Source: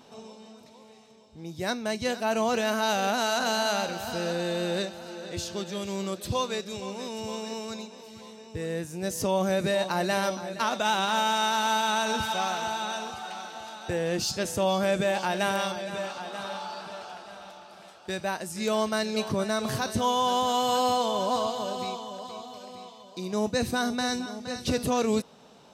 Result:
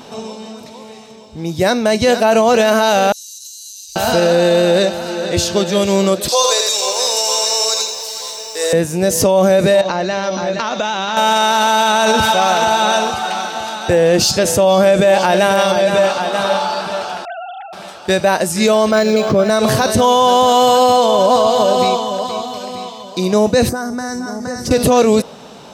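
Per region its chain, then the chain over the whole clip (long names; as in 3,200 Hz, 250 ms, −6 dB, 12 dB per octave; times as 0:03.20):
0:03.12–0:03.96: inverse Chebyshev band-stop filter 210–1,200 Hz, stop band 80 dB + downward compressor, threshold −46 dBFS
0:06.28–0:08.73: high-pass filter 500 Hz 24 dB per octave + high shelf with overshoot 3,600 Hz +9.5 dB, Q 1.5 + feedback echo at a low word length 83 ms, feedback 35%, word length 9 bits, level −6 dB
0:09.81–0:11.17: elliptic low-pass filter 6,700 Hz, stop band 50 dB + downward compressor 10 to 1, threshold −33 dBFS
0:17.25–0:17.73: three sine waves on the formant tracks + Butterworth band-reject 1,200 Hz, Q 4.5
0:18.91–0:19.50: notch comb filter 940 Hz + linearly interpolated sample-rate reduction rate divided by 4×
0:23.69–0:24.71: flat-topped bell 3,100 Hz −16 dB 1 octave + downward compressor 5 to 1, threshold −37 dBFS
whole clip: dynamic equaliser 560 Hz, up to +6 dB, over −42 dBFS, Q 1.9; boost into a limiter +20 dB; level −3 dB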